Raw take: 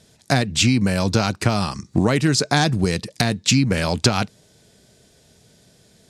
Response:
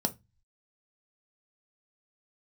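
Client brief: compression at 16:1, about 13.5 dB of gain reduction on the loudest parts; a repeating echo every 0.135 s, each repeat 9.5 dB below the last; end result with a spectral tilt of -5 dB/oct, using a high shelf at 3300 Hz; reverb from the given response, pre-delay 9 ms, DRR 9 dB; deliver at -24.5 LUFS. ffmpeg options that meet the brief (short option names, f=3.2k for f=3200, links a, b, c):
-filter_complex "[0:a]highshelf=f=3.3k:g=-5.5,acompressor=threshold=-26dB:ratio=16,aecho=1:1:135|270|405|540:0.335|0.111|0.0365|0.012,asplit=2[a][b];[1:a]atrim=start_sample=2205,adelay=9[c];[b][c]afir=irnorm=-1:irlink=0,volume=-14.5dB[d];[a][d]amix=inputs=2:normalize=0,volume=5dB"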